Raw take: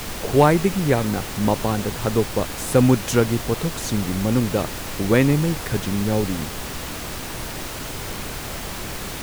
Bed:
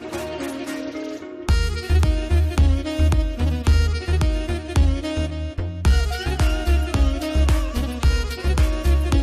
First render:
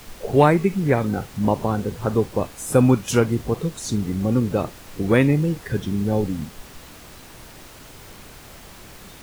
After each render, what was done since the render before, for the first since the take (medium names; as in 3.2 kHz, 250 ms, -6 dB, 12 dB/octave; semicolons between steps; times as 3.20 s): noise print and reduce 12 dB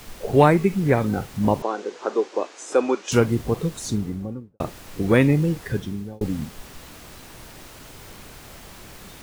1.62–3.12 s: elliptic band-pass 340–6700 Hz, stop band 50 dB; 3.76–4.60 s: studio fade out; 5.67–6.21 s: fade out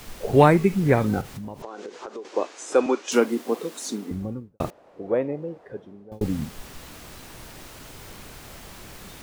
1.21–2.25 s: compression 10:1, threshold -32 dBFS; 2.86–4.11 s: Chebyshev high-pass 240 Hz, order 4; 4.70–6.12 s: band-pass filter 590 Hz, Q 2.4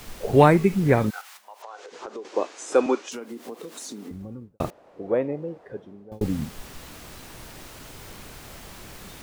1.09–1.91 s: high-pass 1.1 kHz -> 510 Hz 24 dB/octave; 3.02–4.50 s: compression 5:1, threshold -34 dBFS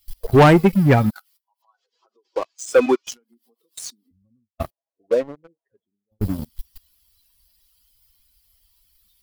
expander on every frequency bin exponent 2; waveshaping leveller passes 3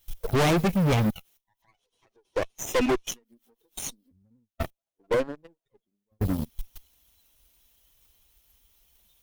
comb filter that takes the minimum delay 0.32 ms; hard clipper -20 dBFS, distortion -5 dB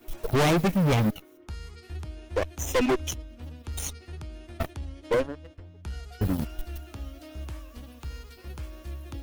add bed -20 dB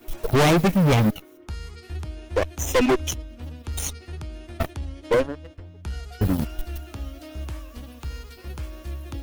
trim +4.5 dB